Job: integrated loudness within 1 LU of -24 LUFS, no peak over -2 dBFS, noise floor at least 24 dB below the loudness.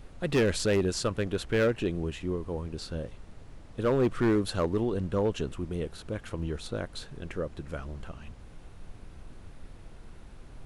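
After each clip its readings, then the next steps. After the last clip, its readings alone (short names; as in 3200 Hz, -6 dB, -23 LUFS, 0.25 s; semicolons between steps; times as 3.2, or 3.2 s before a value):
clipped 1.1%; flat tops at -19.5 dBFS; noise floor -50 dBFS; noise floor target -55 dBFS; loudness -30.5 LUFS; peak -19.5 dBFS; loudness target -24.0 LUFS
-> clip repair -19.5 dBFS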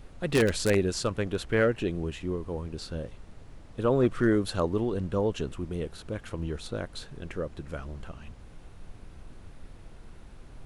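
clipped 0.0%; noise floor -50 dBFS; noise floor target -54 dBFS
-> noise print and reduce 6 dB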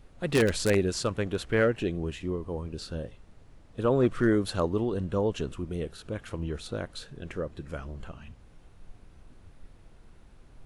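noise floor -55 dBFS; loudness -29.5 LUFS; peak -10.5 dBFS; loudness target -24.0 LUFS
-> gain +5.5 dB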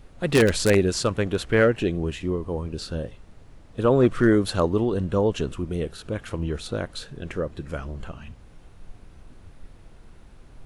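loudness -24.0 LUFS; peak -5.0 dBFS; noise floor -49 dBFS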